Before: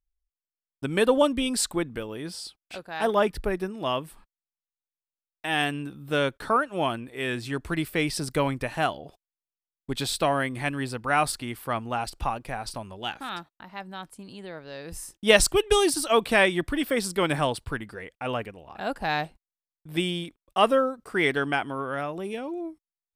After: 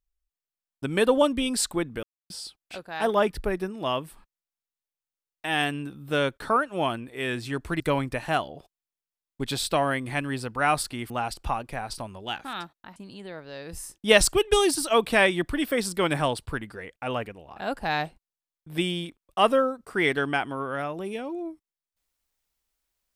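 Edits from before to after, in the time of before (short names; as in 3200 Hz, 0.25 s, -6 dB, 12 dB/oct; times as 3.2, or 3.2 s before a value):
2.03–2.3 mute
7.8–8.29 cut
11.59–11.86 cut
13.72–14.15 cut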